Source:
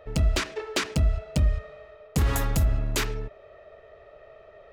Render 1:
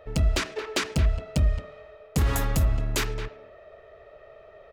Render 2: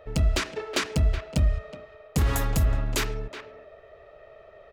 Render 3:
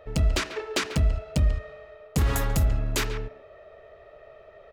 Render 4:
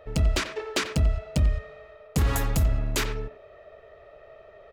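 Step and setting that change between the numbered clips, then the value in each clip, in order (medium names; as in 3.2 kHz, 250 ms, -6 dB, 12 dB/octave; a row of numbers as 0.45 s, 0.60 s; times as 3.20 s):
speakerphone echo, time: 220 ms, 370 ms, 140 ms, 90 ms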